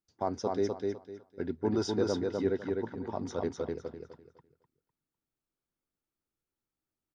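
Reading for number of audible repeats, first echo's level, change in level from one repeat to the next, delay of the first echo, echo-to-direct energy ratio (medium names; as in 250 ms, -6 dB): 3, -3.0 dB, -12.0 dB, 252 ms, -2.5 dB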